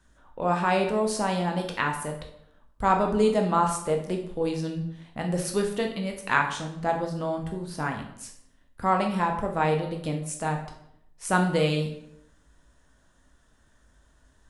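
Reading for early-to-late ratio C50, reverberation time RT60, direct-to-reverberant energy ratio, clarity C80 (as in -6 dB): 8.0 dB, 0.70 s, 2.5 dB, 11.0 dB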